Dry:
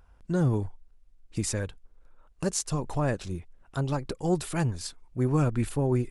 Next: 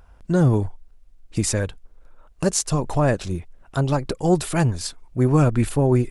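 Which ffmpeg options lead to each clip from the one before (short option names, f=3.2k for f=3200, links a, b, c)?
-af "equalizer=f=640:w=3.9:g=3,volume=7.5dB"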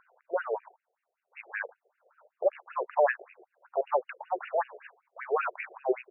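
-af "bandreject=f=50:t=h:w=6,bandreject=f=100:t=h:w=6,bandreject=f=150:t=h:w=6,bandreject=f=200:t=h:w=6,bandreject=f=250:t=h:w=6,bandreject=f=300:t=h:w=6,bandreject=f=350:t=h:w=6,afftfilt=real='re*between(b*sr/1024,520*pow(2100/520,0.5+0.5*sin(2*PI*5.2*pts/sr))/1.41,520*pow(2100/520,0.5+0.5*sin(2*PI*5.2*pts/sr))*1.41)':imag='im*between(b*sr/1024,520*pow(2100/520,0.5+0.5*sin(2*PI*5.2*pts/sr))/1.41,520*pow(2100/520,0.5+0.5*sin(2*PI*5.2*pts/sr))*1.41)':win_size=1024:overlap=0.75,volume=1.5dB"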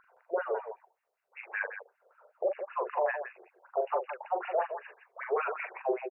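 -af "alimiter=limit=-20.5dB:level=0:latency=1:release=421,aecho=1:1:40.82|166.2:0.501|0.355"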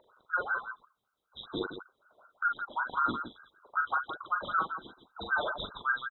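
-af "afftfilt=real='real(if(between(b,1,1012),(2*floor((b-1)/92)+1)*92-b,b),0)':imag='imag(if(between(b,1,1012),(2*floor((b-1)/92)+1)*92-b,b),0)*if(between(b,1,1012),-1,1)':win_size=2048:overlap=0.75"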